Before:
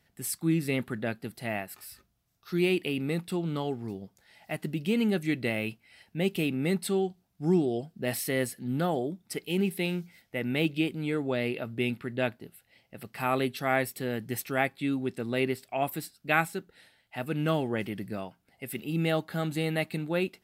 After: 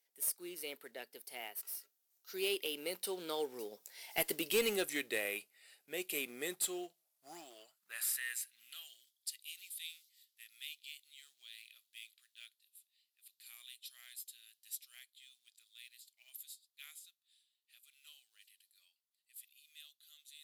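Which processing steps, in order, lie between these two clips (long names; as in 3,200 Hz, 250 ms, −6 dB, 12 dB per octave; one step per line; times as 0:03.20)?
source passing by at 0:04.53, 26 m/s, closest 8.1 metres
first-order pre-emphasis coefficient 0.9
speech leveller within 4 dB 0.5 s
floating-point word with a short mantissa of 2 bits
high-pass filter sweep 440 Hz → 3,600 Hz, 0:06.80–0:09.01
asymmetric clip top −42.5 dBFS
level +15.5 dB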